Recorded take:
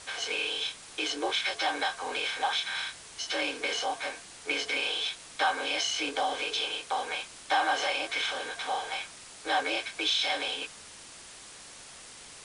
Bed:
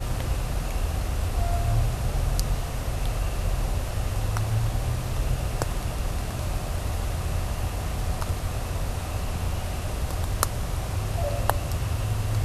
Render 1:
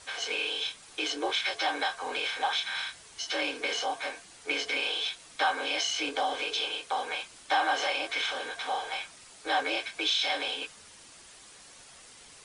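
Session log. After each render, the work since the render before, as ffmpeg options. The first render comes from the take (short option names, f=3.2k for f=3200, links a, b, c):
-af "afftdn=nr=6:nf=-49"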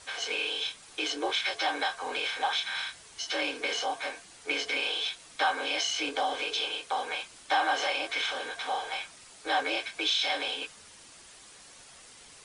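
-af anull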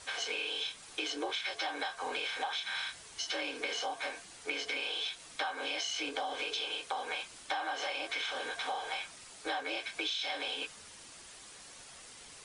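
-af "acompressor=threshold=-33dB:ratio=6"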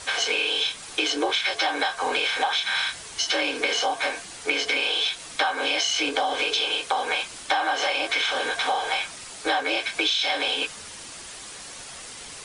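-af "volume=12dB"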